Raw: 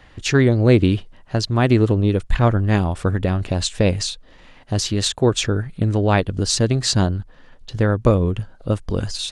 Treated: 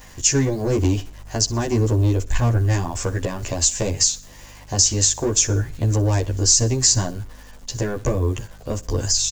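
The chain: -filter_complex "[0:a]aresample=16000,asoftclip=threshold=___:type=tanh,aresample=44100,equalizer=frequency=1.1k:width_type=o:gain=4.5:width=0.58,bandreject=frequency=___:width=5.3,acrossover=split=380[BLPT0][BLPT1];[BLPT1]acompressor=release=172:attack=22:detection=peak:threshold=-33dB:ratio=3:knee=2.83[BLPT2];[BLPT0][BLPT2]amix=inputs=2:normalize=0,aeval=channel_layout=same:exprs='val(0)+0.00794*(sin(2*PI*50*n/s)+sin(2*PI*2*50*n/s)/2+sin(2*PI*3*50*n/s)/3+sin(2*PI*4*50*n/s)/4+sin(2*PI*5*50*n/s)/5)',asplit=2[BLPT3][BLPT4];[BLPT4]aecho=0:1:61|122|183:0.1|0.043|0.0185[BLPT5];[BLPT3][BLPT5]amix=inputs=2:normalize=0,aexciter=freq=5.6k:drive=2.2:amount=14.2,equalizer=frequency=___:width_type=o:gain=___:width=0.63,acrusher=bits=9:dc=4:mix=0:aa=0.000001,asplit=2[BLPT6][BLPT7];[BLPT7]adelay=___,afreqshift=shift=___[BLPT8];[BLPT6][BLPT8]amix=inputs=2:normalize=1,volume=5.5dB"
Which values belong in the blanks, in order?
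-12dB, 1.3k, 180, -13, 12, 0.25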